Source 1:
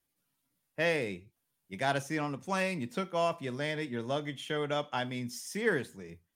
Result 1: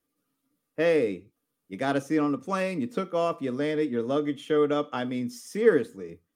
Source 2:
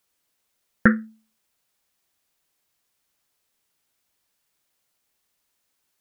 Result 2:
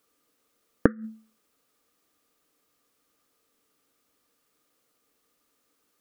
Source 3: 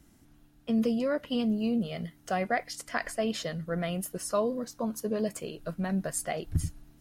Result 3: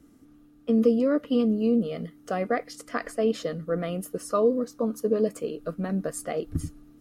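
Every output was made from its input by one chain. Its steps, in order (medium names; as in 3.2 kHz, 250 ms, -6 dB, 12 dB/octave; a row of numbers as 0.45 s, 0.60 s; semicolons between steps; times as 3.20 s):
inverted gate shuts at -12 dBFS, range -26 dB; small resonant body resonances 290/450/1200 Hz, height 14 dB, ringing for 35 ms; normalise loudness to -27 LUFS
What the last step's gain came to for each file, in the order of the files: -1.5 dB, +0.5 dB, -3.5 dB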